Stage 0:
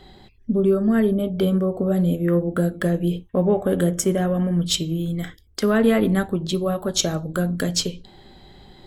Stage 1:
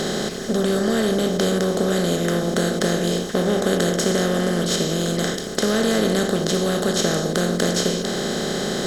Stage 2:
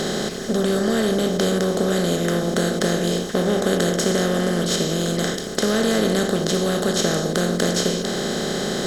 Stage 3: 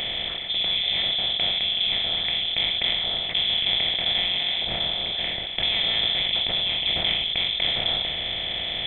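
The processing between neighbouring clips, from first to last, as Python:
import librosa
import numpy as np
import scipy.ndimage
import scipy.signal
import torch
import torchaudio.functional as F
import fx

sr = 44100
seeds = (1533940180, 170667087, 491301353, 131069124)

y1 = fx.bin_compress(x, sr, power=0.2)
y1 = y1 * 10.0 ** (-7.5 / 20.0)
y2 = y1
y3 = scipy.signal.sosfilt(scipy.signal.butter(4, 250.0, 'highpass', fs=sr, output='sos'), y2)
y3 = fx.freq_invert(y3, sr, carrier_hz=3800)
y3 = fx.sustainer(y3, sr, db_per_s=23.0)
y3 = y3 * 10.0 ** (-3.0 / 20.0)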